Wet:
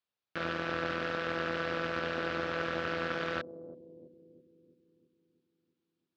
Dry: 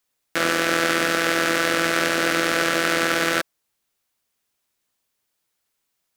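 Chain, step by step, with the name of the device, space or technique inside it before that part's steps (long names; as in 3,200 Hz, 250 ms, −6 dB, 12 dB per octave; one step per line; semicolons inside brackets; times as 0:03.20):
analogue delay pedal into a guitar amplifier (bucket-brigade delay 331 ms, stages 1,024, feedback 59%, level −8 dB; tube saturation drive 12 dB, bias 0.7; loudspeaker in its box 77–4,400 Hz, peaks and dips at 82 Hz +5 dB, 280 Hz −3 dB, 2,000 Hz −5 dB)
level −7.5 dB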